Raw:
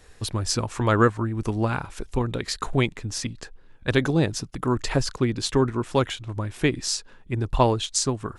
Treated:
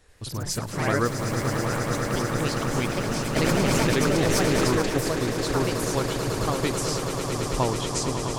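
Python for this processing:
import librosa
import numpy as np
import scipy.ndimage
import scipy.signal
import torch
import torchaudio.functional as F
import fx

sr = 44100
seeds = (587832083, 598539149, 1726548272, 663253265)

y = fx.echo_pitch(x, sr, ms=86, semitones=3, count=3, db_per_echo=-3.0)
y = fx.quant_float(y, sr, bits=2, at=(1.05, 1.65))
y = fx.echo_swell(y, sr, ms=109, loudest=8, wet_db=-10)
y = fx.env_flatten(y, sr, amount_pct=100, at=(3.36, 4.82))
y = y * librosa.db_to_amplitude(-6.5)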